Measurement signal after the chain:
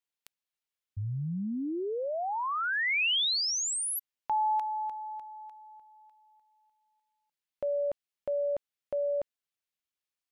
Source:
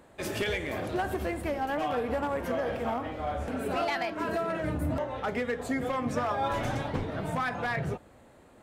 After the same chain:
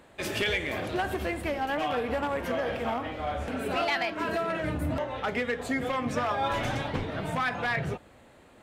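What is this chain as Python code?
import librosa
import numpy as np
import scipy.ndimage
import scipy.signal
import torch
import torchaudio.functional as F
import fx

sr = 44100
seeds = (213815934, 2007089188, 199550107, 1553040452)

y = fx.peak_eq(x, sr, hz=2900.0, db=6.0, octaves=1.7)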